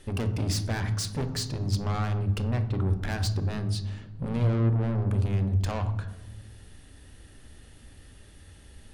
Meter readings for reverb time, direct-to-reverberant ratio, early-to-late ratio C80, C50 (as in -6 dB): 1.2 s, 8.0 dB, 14.0 dB, 11.0 dB